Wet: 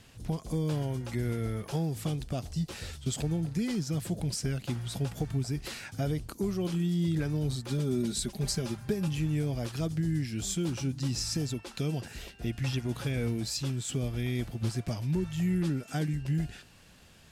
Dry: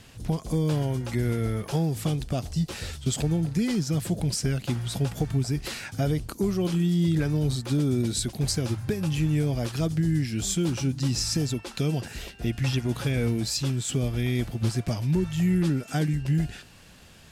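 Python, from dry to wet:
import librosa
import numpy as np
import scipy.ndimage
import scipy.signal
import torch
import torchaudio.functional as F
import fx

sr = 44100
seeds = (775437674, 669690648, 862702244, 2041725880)

y = fx.comb(x, sr, ms=5.0, depth=0.61, at=(7.68, 9.08))
y = F.gain(torch.from_numpy(y), -5.5).numpy()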